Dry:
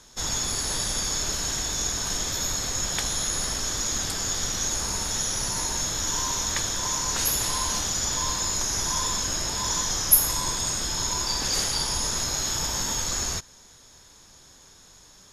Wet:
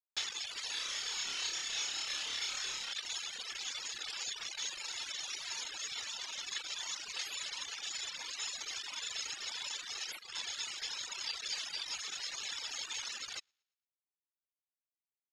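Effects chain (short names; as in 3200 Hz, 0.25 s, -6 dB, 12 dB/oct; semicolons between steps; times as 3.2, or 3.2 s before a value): compressor 12:1, threshold -35 dBFS, peak gain reduction 24 dB; high shelf 2900 Hz +12 dB; tube stage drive 29 dB, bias 0.65; comb 2.3 ms, depth 99%; bit-crush 5-bit; tilt +4.5 dB/oct; feedback echo 0.114 s, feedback 47%, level -20 dB; reverb removal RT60 1.4 s; 0.71–2.93 flutter echo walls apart 5 m, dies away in 0.77 s; reverb removal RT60 0.68 s; ladder low-pass 4200 Hz, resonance 25%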